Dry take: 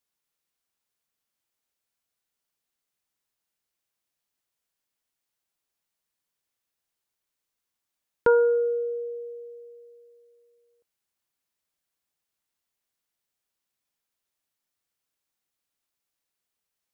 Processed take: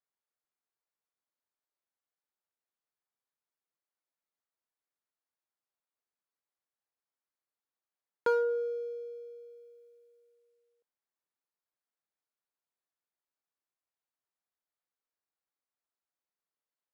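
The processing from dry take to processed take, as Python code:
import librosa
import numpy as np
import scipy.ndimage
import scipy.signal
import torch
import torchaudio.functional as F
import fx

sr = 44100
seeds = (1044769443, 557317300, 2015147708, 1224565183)

y = scipy.ndimage.median_filter(x, 15, mode='constant')
y = fx.highpass(y, sr, hz=550.0, slope=6)
y = y * 10.0 ** (-5.0 / 20.0)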